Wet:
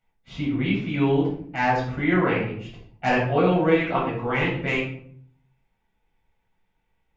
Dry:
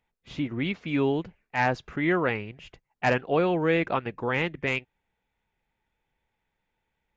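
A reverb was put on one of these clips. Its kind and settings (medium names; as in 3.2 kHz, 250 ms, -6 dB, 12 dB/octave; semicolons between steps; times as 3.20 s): simulated room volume 840 m³, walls furnished, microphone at 7.3 m; trim -6 dB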